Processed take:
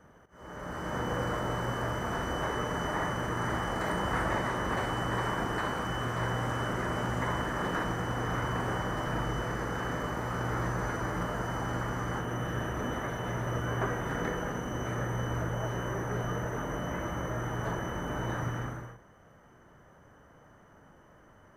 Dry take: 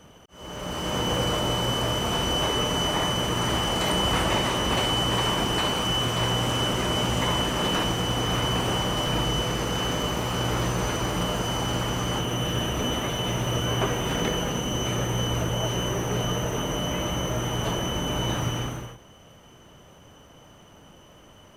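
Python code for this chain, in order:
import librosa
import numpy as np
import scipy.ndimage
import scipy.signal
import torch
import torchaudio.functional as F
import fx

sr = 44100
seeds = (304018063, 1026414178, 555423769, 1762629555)

y = fx.high_shelf_res(x, sr, hz=2200.0, db=-7.5, q=3.0)
y = fx.doubler(y, sr, ms=41.0, db=-12.0)
y = y * librosa.db_to_amplitude(-7.0)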